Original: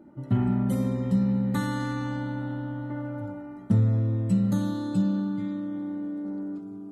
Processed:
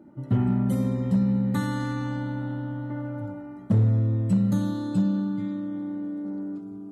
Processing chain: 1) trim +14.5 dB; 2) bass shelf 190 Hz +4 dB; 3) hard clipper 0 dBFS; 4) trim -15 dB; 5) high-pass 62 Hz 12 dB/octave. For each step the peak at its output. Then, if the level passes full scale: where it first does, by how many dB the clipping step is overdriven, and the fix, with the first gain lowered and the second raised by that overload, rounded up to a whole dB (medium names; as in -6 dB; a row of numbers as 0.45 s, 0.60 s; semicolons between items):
+3.0 dBFS, +5.0 dBFS, 0.0 dBFS, -15.0 dBFS, -11.5 dBFS; step 1, 5.0 dB; step 1 +9.5 dB, step 4 -10 dB